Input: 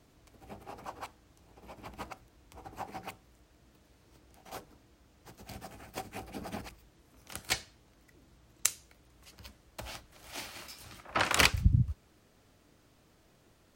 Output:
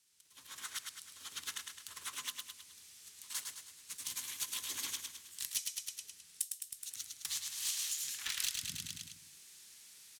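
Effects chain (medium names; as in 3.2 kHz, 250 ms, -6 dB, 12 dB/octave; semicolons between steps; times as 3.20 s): frequency weighting ITU-R 468; hard clipper -1 dBFS, distortion -20 dB; on a send: feedback delay 142 ms, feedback 48%, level -7 dB; on the sum: compression 3:1, threshold -39 dBFS, peak gain reduction 21 dB; hum notches 50/100 Hz; speed mistake 33 rpm record played at 45 rpm; in parallel at -7 dB: integer overflow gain 30.5 dB; on the sum: level rider gain up to 16 dB; amplifier tone stack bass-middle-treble 6-0-2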